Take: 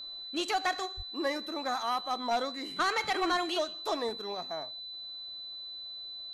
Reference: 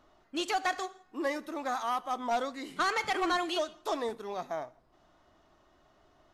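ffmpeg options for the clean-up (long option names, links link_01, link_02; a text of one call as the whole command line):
ffmpeg -i in.wav -filter_complex "[0:a]bandreject=frequency=4000:width=30,asplit=3[link_01][link_02][link_03];[link_01]afade=type=out:start_time=0.96:duration=0.02[link_04];[link_02]highpass=frequency=140:width=0.5412,highpass=frequency=140:width=1.3066,afade=type=in:start_time=0.96:duration=0.02,afade=type=out:start_time=1.08:duration=0.02[link_05];[link_03]afade=type=in:start_time=1.08:duration=0.02[link_06];[link_04][link_05][link_06]amix=inputs=3:normalize=0,asetnsamples=nb_out_samples=441:pad=0,asendcmd='4.35 volume volume 3dB',volume=0dB" out.wav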